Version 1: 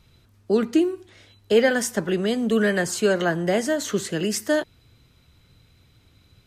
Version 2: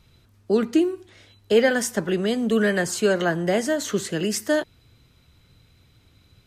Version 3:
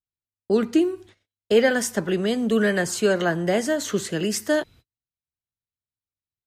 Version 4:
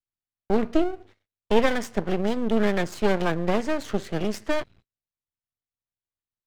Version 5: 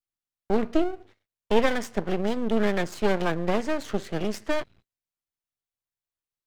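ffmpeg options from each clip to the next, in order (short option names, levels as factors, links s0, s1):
-af anull
-af "agate=range=0.00562:threshold=0.00501:ratio=16:detection=peak"
-af "adynamicsmooth=sensitivity=1:basefreq=3500,aeval=exprs='max(val(0),0)':c=same,volume=1.19"
-af "equalizer=f=66:w=0.45:g=-2.5,volume=0.891"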